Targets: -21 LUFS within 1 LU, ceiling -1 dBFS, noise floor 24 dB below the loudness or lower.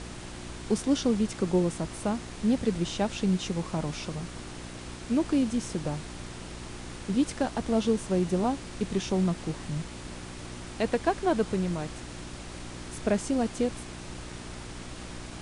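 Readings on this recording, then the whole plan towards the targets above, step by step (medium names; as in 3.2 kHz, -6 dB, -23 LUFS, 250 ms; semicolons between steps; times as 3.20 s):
hum 60 Hz; highest harmonic 360 Hz; hum level -43 dBFS; noise floor -42 dBFS; noise floor target -54 dBFS; loudness -29.5 LUFS; peak level -12.0 dBFS; loudness target -21.0 LUFS
-> de-hum 60 Hz, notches 6; noise print and reduce 12 dB; trim +8.5 dB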